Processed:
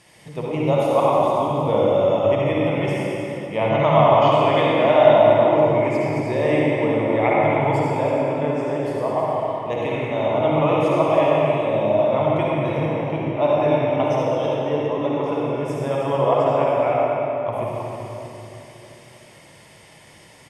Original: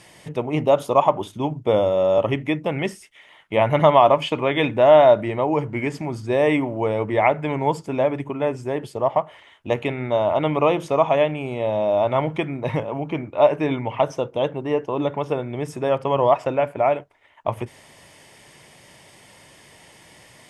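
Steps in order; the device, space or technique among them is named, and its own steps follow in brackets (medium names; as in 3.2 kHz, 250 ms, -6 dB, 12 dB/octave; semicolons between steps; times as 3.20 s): cave (delay 317 ms -10.5 dB; reverberation RT60 3.1 s, pre-delay 49 ms, DRR -5.5 dB); 3.69–4.32 s: steep low-pass 7.1 kHz 72 dB/octave; trim -5.5 dB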